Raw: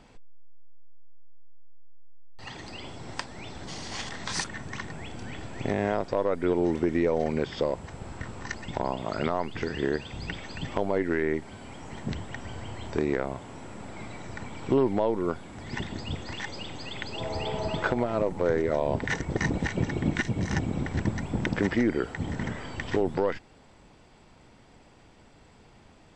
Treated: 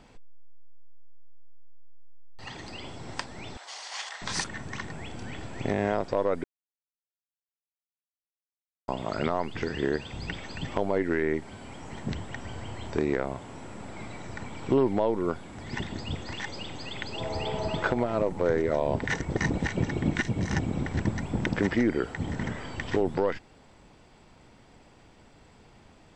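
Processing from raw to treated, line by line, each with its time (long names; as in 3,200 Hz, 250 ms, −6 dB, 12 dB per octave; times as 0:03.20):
0:03.57–0:04.22: high-pass filter 680 Hz 24 dB per octave
0:06.44–0:08.88: silence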